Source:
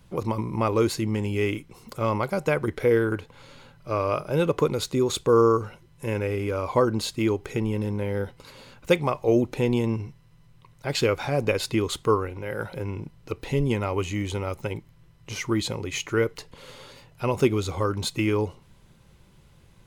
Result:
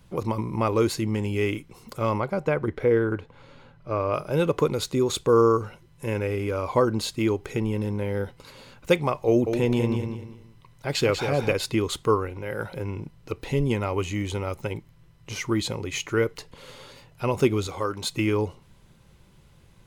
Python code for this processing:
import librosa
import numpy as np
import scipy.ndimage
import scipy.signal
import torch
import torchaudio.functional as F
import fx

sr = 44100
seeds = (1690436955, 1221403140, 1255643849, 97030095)

y = fx.lowpass(x, sr, hz=1900.0, slope=6, at=(2.2, 4.14))
y = fx.echo_feedback(y, sr, ms=193, feedback_pct=28, wet_db=-7, at=(9.27, 11.53))
y = fx.low_shelf(y, sr, hz=220.0, db=-11.0, at=(17.67, 18.1))